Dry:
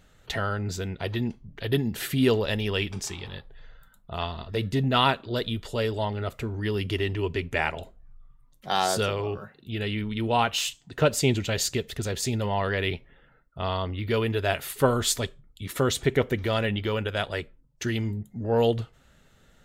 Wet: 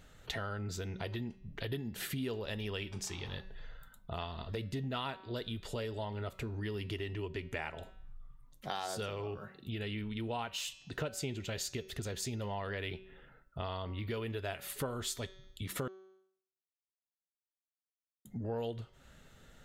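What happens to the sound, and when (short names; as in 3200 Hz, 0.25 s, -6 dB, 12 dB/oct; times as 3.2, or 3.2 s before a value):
15.88–18.25 mute
whole clip: de-hum 189.5 Hz, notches 35; compressor 4:1, threshold -38 dBFS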